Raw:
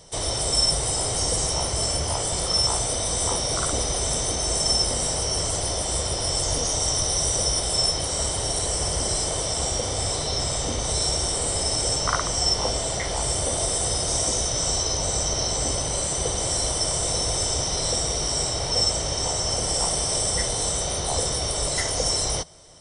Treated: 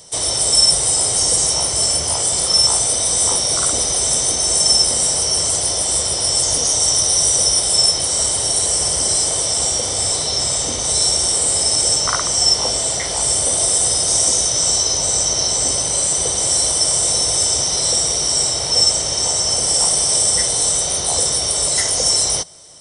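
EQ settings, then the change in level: high-pass 110 Hz 6 dB/octave; treble shelf 4.7 kHz +11 dB; +2.0 dB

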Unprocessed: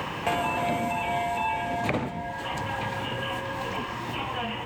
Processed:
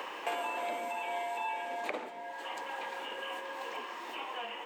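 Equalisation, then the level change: high-pass 350 Hz 24 dB/octave; -8.0 dB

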